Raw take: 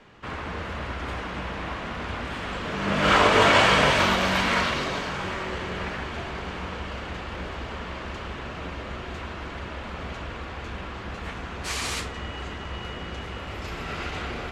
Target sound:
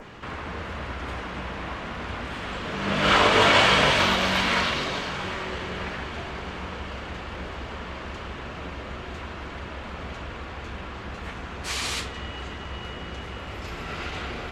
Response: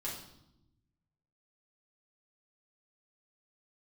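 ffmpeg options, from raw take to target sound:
-af "adynamicequalizer=threshold=0.0126:dfrequency=3600:dqfactor=1.2:tfrequency=3600:tqfactor=1.2:attack=5:release=100:ratio=0.375:range=2:mode=boostabove:tftype=bell,acompressor=mode=upward:threshold=-33dB:ratio=2.5,volume=-1dB"

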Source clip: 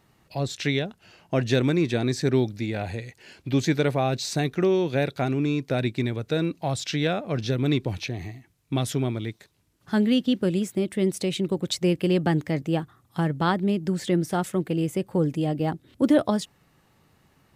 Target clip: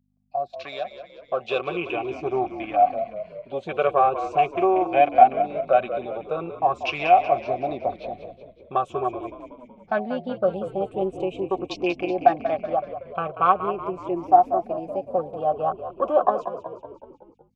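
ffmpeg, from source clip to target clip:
ffmpeg -i in.wav -filter_complex "[0:a]afftfilt=real='re*pow(10,10/40*sin(2*PI*(0.73*log(max(b,1)*sr/1024/100)/log(2)-(-0.42)*(pts-256)/sr)))':imag='im*pow(10,10/40*sin(2*PI*(0.73*log(max(b,1)*sr/1024/100)/log(2)-(-0.42)*(pts-256)/sr)))':win_size=1024:overlap=0.75,agate=range=-33dB:threshold=-46dB:ratio=3:detection=peak,afwtdn=0.0224,equalizer=frequency=210:width_type=o:width=1.7:gain=-8.5,aecho=1:1:5.3:0.48,dynaudnorm=framelen=600:gausssize=5:maxgain=10dB,aeval=exprs='val(0)+0.00562*(sin(2*PI*50*n/s)+sin(2*PI*2*50*n/s)/2+sin(2*PI*3*50*n/s)/3+sin(2*PI*4*50*n/s)/4+sin(2*PI*5*50*n/s)/5)':channel_layout=same,asplit=3[link_01][link_02][link_03];[link_01]bandpass=frequency=730:width_type=q:width=8,volume=0dB[link_04];[link_02]bandpass=frequency=1090:width_type=q:width=8,volume=-6dB[link_05];[link_03]bandpass=frequency=2440:width_type=q:width=8,volume=-9dB[link_06];[link_04][link_05][link_06]amix=inputs=3:normalize=0,atempo=1,asplit=2[link_07][link_08];[link_08]asplit=6[link_09][link_10][link_11][link_12][link_13][link_14];[link_09]adelay=187,afreqshift=-44,volume=-11dB[link_15];[link_10]adelay=374,afreqshift=-88,volume=-15.9dB[link_16];[link_11]adelay=561,afreqshift=-132,volume=-20.8dB[link_17];[link_12]adelay=748,afreqshift=-176,volume=-25.6dB[link_18];[link_13]adelay=935,afreqshift=-220,volume=-30.5dB[link_19];[link_14]adelay=1122,afreqshift=-264,volume=-35.4dB[link_20];[link_15][link_16][link_17][link_18][link_19][link_20]amix=inputs=6:normalize=0[link_21];[link_07][link_21]amix=inputs=2:normalize=0,volume=8dB" out.wav

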